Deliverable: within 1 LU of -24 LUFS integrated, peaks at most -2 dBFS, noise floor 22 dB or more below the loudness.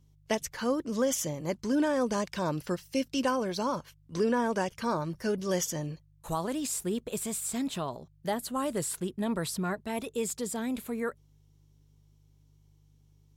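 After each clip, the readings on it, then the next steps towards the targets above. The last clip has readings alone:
hum 50 Hz; highest harmonic 150 Hz; hum level -55 dBFS; loudness -32.0 LUFS; peak level -15.5 dBFS; loudness target -24.0 LUFS
-> de-hum 50 Hz, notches 3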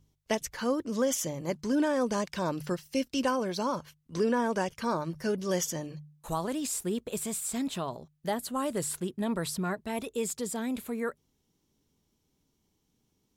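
hum not found; loudness -32.0 LUFS; peak level -15.5 dBFS; loudness target -24.0 LUFS
-> trim +8 dB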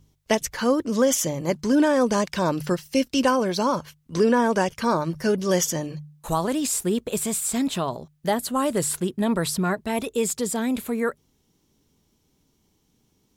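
loudness -24.0 LUFS; peak level -7.5 dBFS; noise floor -68 dBFS

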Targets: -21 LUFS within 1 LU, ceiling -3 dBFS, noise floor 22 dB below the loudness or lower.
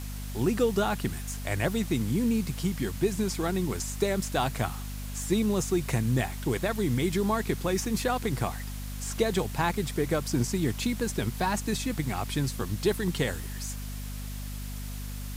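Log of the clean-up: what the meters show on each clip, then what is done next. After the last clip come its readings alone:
hum 50 Hz; highest harmonic 250 Hz; hum level -34 dBFS; noise floor -36 dBFS; noise floor target -52 dBFS; loudness -29.5 LUFS; peak level -13.0 dBFS; loudness target -21.0 LUFS
-> de-hum 50 Hz, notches 5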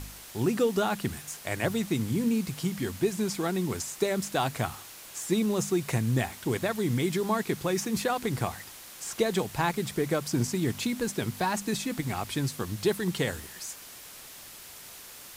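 hum not found; noise floor -47 dBFS; noise floor target -52 dBFS
-> noise reduction 6 dB, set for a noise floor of -47 dBFS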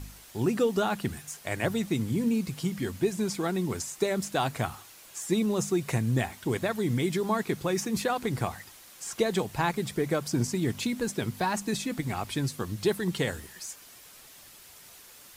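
noise floor -51 dBFS; noise floor target -52 dBFS
-> noise reduction 6 dB, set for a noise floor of -51 dBFS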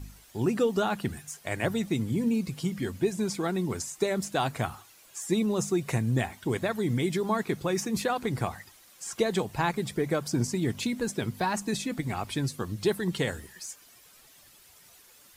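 noise floor -56 dBFS; loudness -29.5 LUFS; peak level -13.0 dBFS; loudness target -21.0 LUFS
-> trim +8.5 dB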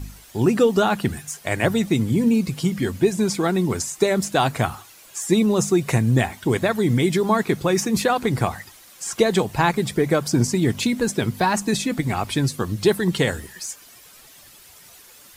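loudness -21.0 LUFS; peak level -4.5 dBFS; noise floor -48 dBFS

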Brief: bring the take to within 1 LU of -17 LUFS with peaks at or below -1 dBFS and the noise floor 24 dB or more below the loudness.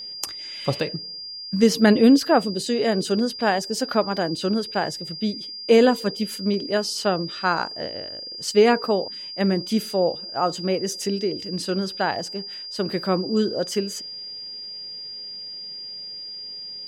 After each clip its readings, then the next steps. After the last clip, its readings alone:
steady tone 4.8 kHz; tone level -33 dBFS; loudness -23.5 LUFS; peak level -5.0 dBFS; loudness target -17.0 LUFS
-> band-stop 4.8 kHz, Q 30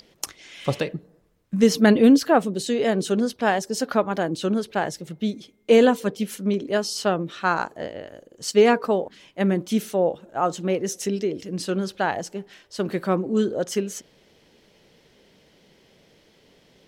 steady tone not found; loudness -23.0 LUFS; peak level -5.0 dBFS; loudness target -17.0 LUFS
-> trim +6 dB; peak limiter -1 dBFS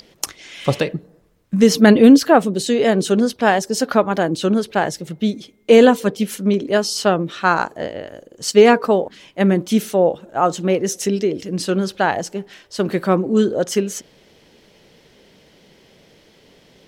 loudness -17.0 LUFS; peak level -1.0 dBFS; noise floor -53 dBFS

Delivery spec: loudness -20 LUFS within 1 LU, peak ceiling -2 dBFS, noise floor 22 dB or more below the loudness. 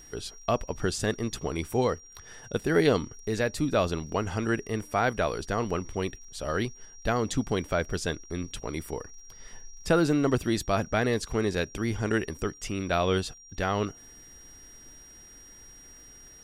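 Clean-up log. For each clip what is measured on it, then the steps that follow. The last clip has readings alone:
tick rate 36 per s; steady tone 5.7 kHz; tone level -49 dBFS; loudness -29.0 LUFS; peak level -9.5 dBFS; loudness target -20.0 LUFS
-> de-click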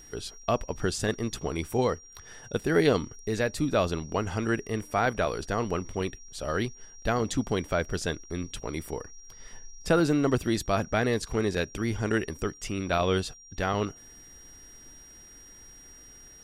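tick rate 0.061 per s; steady tone 5.7 kHz; tone level -49 dBFS
-> band-stop 5.7 kHz, Q 30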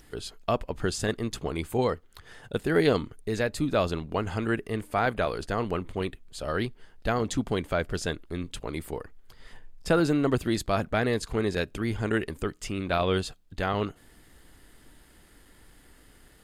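steady tone not found; loudness -29.0 LUFS; peak level -9.5 dBFS; loudness target -20.0 LUFS
-> trim +9 dB; peak limiter -2 dBFS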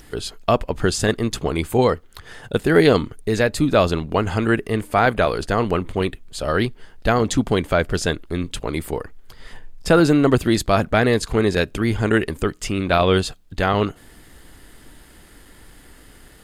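loudness -20.0 LUFS; peak level -2.0 dBFS; noise floor -48 dBFS

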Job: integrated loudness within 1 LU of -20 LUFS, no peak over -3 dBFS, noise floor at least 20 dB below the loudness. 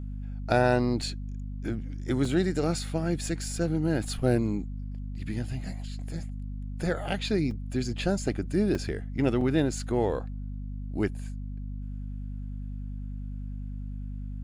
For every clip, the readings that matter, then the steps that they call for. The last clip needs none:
dropouts 5; longest dropout 2.5 ms; hum 50 Hz; highest harmonic 250 Hz; hum level -33 dBFS; loudness -30.5 LUFS; peak level -10.5 dBFS; loudness target -20.0 LUFS
-> interpolate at 1.02/2.25/7.51/8.75/9.41 s, 2.5 ms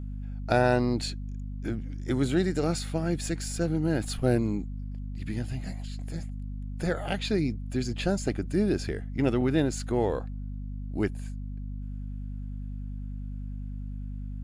dropouts 0; hum 50 Hz; highest harmonic 250 Hz; hum level -33 dBFS
-> de-hum 50 Hz, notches 5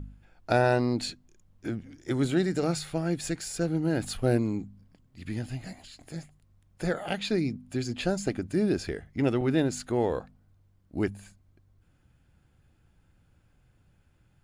hum not found; loudness -29.5 LUFS; peak level -11.0 dBFS; loudness target -20.0 LUFS
-> trim +9.5 dB; peak limiter -3 dBFS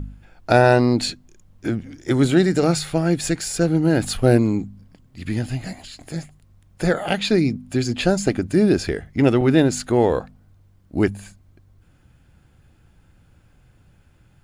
loudness -20.0 LUFS; peak level -3.0 dBFS; noise floor -56 dBFS

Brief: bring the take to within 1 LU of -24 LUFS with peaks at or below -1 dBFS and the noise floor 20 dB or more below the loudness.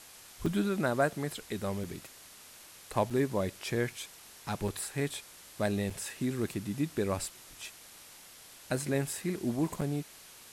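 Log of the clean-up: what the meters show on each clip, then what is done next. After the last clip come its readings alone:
dropouts 6; longest dropout 4.8 ms; noise floor -53 dBFS; noise floor target -54 dBFS; loudness -33.5 LUFS; peak level -15.5 dBFS; loudness target -24.0 LUFS
-> interpolate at 0.46/1.84/3.10/4.68/5.90/9.81 s, 4.8 ms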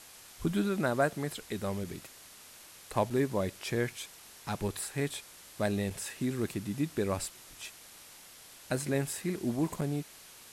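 dropouts 0; noise floor -53 dBFS; noise floor target -54 dBFS
-> noise print and reduce 6 dB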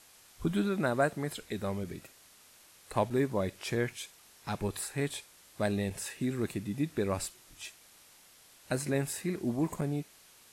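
noise floor -59 dBFS; loudness -33.5 LUFS; peak level -15.5 dBFS; loudness target -24.0 LUFS
-> trim +9.5 dB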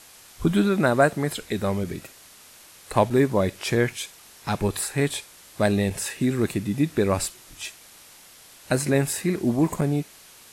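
loudness -24.0 LUFS; peak level -6.0 dBFS; noise floor -50 dBFS

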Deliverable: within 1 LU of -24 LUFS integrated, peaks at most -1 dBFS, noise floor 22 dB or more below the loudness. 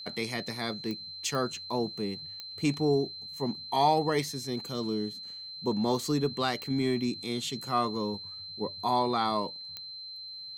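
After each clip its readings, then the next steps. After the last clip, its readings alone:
clicks found 5; steady tone 4.1 kHz; tone level -40 dBFS; loudness -31.0 LUFS; peak level -14.5 dBFS; loudness target -24.0 LUFS
-> de-click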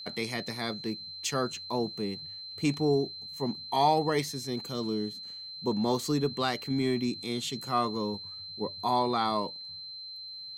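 clicks found 0; steady tone 4.1 kHz; tone level -40 dBFS
-> band-stop 4.1 kHz, Q 30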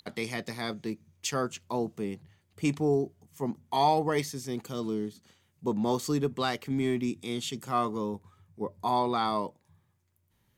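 steady tone not found; loudness -31.0 LUFS; peak level -14.5 dBFS; loudness target -24.0 LUFS
-> trim +7 dB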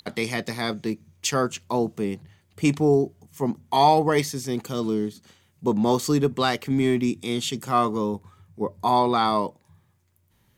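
loudness -24.0 LUFS; peak level -7.5 dBFS; noise floor -65 dBFS

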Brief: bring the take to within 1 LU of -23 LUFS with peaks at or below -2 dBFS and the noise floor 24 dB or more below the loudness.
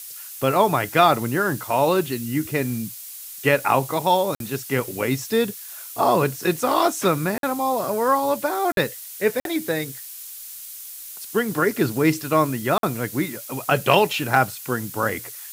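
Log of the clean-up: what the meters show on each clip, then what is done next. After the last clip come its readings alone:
dropouts 5; longest dropout 52 ms; noise floor -38 dBFS; noise floor target -46 dBFS; loudness -22.0 LUFS; peak level -2.5 dBFS; loudness target -23.0 LUFS
-> interpolate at 4.35/7.38/8.72/9.40/12.78 s, 52 ms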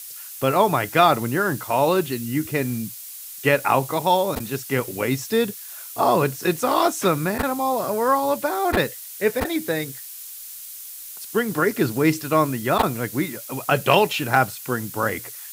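dropouts 0; noise floor -38 dBFS; noise floor target -46 dBFS
-> noise reduction 8 dB, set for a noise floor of -38 dBFS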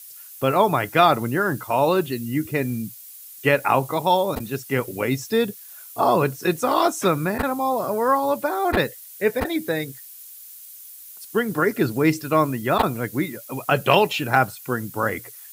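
noise floor -42 dBFS; noise floor target -46 dBFS
-> noise reduction 6 dB, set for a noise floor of -42 dBFS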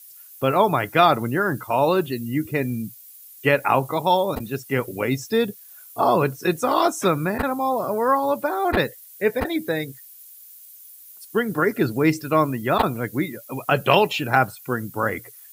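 noise floor -46 dBFS; loudness -22.0 LUFS; peak level -2.5 dBFS; loudness target -23.0 LUFS
-> trim -1 dB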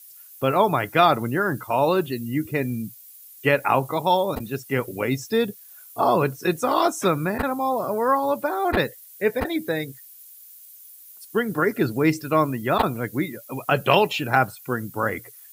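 loudness -23.0 LUFS; peak level -3.5 dBFS; noise floor -47 dBFS

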